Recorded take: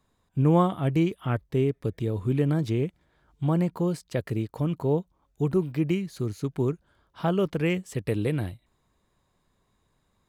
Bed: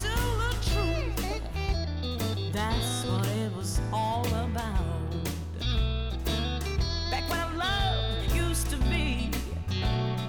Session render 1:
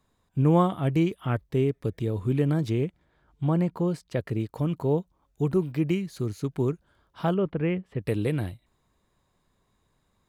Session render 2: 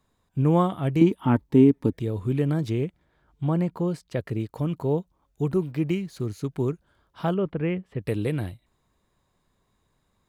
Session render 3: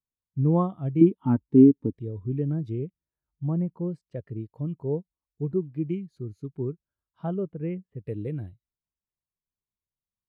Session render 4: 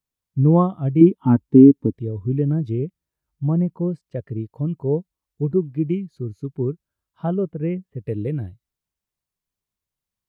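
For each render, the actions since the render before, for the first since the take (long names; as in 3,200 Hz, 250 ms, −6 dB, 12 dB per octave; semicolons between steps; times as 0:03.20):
0:02.85–0:04.40: high-shelf EQ 5,000 Hz −7.5 dB; 0:07.34–0:08.00: high-frequency loss of the air 490 metres
0:01.01–0:01.93: hollow resonant body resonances 260/890 Hz, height 14 dB, ringing for 30 ms; 0:05.67–0:06.30: slack as between gear wheels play −53 dBFS
every bin expanded away from the loudest bin 1.5 to 1
level +7 dB; brickwall limiter −1 dBFS, peak gain reduction 2.5 dB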